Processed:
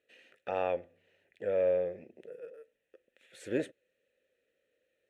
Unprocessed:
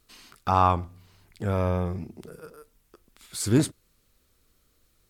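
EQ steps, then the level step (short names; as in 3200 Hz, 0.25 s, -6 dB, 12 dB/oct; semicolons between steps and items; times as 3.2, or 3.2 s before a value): vowel filter e; low shelf 110 Hz -5 dB; bell 4800 Hz -13.5 dB 0.3 oct; +6.5 dB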